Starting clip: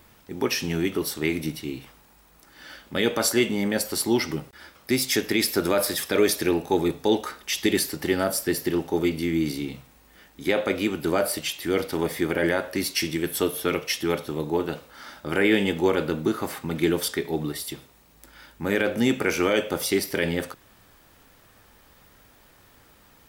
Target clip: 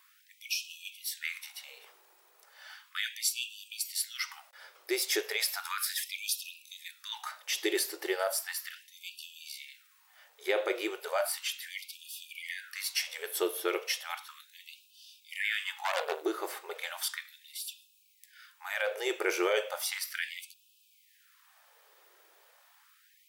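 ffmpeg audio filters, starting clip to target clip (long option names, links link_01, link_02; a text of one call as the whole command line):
ffmpeg -i in.wav -filter_complex "[0:a]asplit=3[link_01][link_02][link_03];[link_01]afade=type=out:start_time=15.84:duration=0.02[link_04];[link_02]aeval=exprs='0.355*(cos(1*acos(clip(val(0)/0.355,-1,1)))-cos(1*PI/2))+0.1*(cos(6*acos(clip(val(0)/0.355,-1,1)))-cos(6*PI/2))':channel_layout=same,afade=type=in:start_time=15.84:duration=0.02,afade=type=out:start_time=16.25:duration=0.02[link_05];[link_03]afade=type=in:start_time=16.25:duration=0.02[link_06];[link_04][link_05][link_06]amix=inputs=3:normalize=0,afftfilt=real='re*gte(b*sr/1024,310*pow(2500/310,0.5+0.5*sin(2*PI*0.35*pts/sr)))':imag='im*gte(b*sr/1024,310*pow(2500/310,0.5+0.5*sin(2*PI*0.35*pts/sr)))':win_size=1024:overlap=0.75,volume=-5.5dB" out.wav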